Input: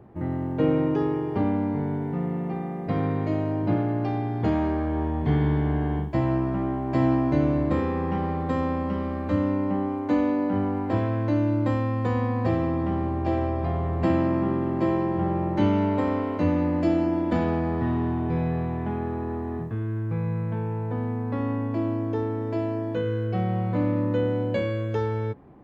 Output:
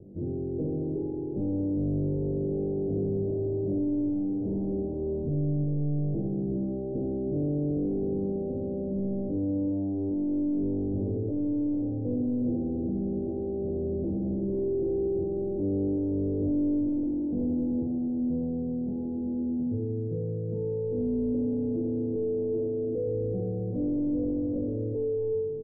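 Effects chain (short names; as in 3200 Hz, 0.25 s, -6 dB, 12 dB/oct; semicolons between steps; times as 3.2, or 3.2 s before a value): flutter echo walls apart 3.5 m, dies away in 0.66 s; soft clip -26 dBFS, distortion -3 dB; steep low-pass 510 Hz 36 dB/oct; echo 0.37 s -10 dB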